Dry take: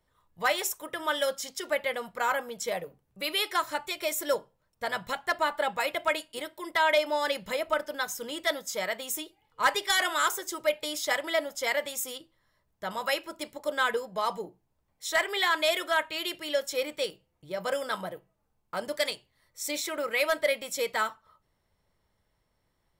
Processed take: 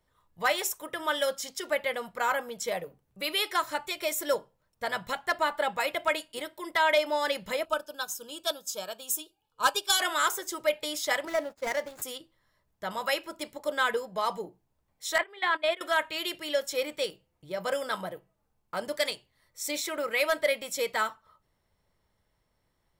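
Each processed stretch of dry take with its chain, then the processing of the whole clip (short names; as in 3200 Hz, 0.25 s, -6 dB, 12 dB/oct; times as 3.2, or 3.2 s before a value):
7.65–10.01 Butterworth band-stop 2000 Hz, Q 2.7 + bell 12000 Hz +6.5 dB 2.7 oct + upward expander, over -38 dBFS
11.25–12.02 median filter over 15 samples + expander -42 dBFS
15.18–15.81 running mean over 7 samples + gate -30 dBFS, range -16 dB
whole clip: dry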